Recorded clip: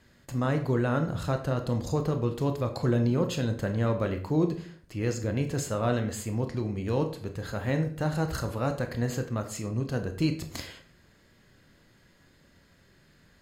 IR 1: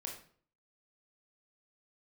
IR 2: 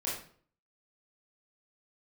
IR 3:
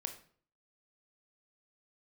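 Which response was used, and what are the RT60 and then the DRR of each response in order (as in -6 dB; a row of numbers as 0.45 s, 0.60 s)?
3; 0.50 s, 0.50 s, 0.50 s; -0.5 dB, -7.0 dB, 6.0 dB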